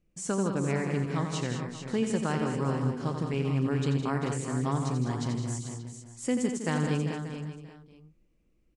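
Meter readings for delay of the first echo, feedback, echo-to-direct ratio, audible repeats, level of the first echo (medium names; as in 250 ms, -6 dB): 87 ms, no regular repeats, -1.5 dB, 11, -7.5 dB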